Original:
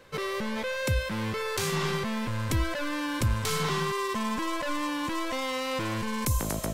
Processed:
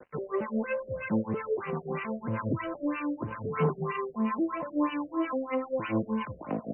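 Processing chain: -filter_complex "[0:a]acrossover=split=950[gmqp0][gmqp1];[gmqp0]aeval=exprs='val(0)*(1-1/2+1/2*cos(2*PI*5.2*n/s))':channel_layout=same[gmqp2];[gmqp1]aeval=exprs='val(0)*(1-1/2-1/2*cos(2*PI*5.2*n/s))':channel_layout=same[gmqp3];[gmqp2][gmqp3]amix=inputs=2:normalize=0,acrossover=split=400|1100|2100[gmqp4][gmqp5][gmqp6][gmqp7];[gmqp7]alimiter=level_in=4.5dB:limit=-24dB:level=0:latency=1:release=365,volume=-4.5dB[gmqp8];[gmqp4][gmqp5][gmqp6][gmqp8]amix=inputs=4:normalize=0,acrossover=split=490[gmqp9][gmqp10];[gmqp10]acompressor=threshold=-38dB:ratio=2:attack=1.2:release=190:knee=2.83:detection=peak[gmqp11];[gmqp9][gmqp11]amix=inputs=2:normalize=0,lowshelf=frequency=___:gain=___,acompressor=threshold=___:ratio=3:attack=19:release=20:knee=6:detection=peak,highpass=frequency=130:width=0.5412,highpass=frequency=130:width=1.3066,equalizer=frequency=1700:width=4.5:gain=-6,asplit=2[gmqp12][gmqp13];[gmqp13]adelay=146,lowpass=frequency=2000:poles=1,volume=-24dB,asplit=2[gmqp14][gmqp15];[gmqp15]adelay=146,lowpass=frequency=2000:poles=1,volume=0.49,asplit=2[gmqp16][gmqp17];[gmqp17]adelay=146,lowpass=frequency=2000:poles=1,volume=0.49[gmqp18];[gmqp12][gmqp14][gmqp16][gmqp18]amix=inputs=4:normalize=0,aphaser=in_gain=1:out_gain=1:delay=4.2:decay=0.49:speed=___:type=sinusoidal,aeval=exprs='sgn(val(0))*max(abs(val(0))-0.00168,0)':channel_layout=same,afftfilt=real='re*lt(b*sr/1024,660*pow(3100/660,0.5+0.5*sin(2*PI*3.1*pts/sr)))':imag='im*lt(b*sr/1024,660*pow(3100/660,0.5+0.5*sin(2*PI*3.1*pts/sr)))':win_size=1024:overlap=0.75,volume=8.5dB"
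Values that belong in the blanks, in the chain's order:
240, -5.5, -38dB, 0.83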